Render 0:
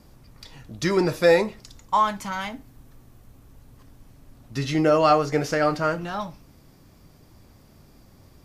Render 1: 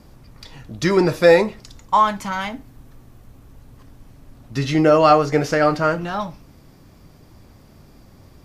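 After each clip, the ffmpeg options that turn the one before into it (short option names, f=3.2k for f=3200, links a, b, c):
-af "highshelf=f=5.1k:g=-4.5,volume=5dB"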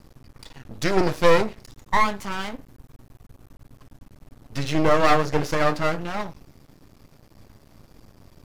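-af "aeval=exprs='max(val(0),0)':c=same"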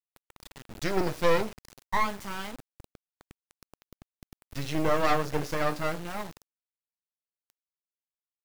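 -af "acrusher=bits=5:mix=0:aa=0.000001,volume=-7dB"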